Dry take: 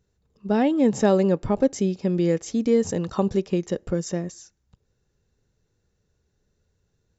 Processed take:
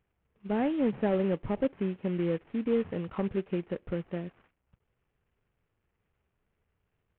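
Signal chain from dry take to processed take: CVSD 16 kbps; gain -7.5 dB

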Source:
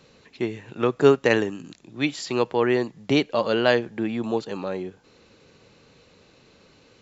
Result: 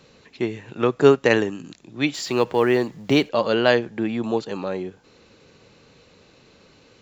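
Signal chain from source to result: 2.14–3.29 G.711 law mismatch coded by mu; gain +2 dB

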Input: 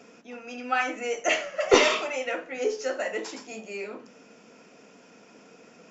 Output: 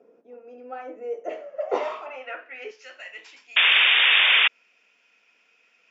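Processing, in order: 3.56–4.48 painted sound noise 350–3700 Hz -13 dBFS; band-pass sweep 460 Hz -> 2600 Hz, 1.38–2.88; 2.06–2.71 speaker cabinet 210–5600 Hz, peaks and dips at 260 Hz +7 dB, 410 Hz +10 dB, 670 Hz +8 dB, 2700 Hz +8 dB

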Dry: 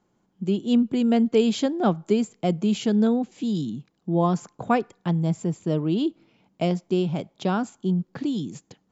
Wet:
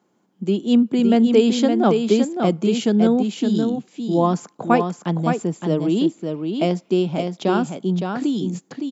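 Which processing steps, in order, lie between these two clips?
Chebyshev high-pass 230 Hz, order 2; echo 0.564 s -5.5 dB; gain +5 dB

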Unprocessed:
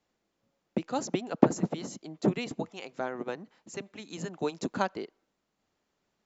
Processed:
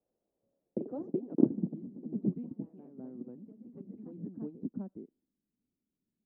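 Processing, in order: echoes that change speed 0.124 s, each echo +2 st, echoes 3, each echo -6 dB; low-pass sweep 560 Hz -> 250 Hz, 0.46–1.71; gain -9 dB

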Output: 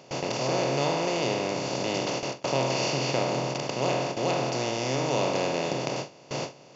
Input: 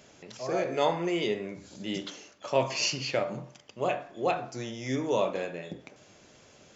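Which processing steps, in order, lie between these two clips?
per-bin compression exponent 0.2; bell 140 Hz +11 dB 0.39 oct; gate with hold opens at -12 dBFS; gain -7 dB

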